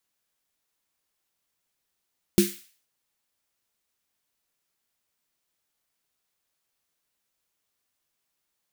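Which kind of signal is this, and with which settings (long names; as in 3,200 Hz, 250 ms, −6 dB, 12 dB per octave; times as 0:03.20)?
synth snare length 0.48 s, tones 200 Hz, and 350 Hz, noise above 1,800 Hz, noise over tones −10 dB, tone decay 0.23 s, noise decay 0.48 s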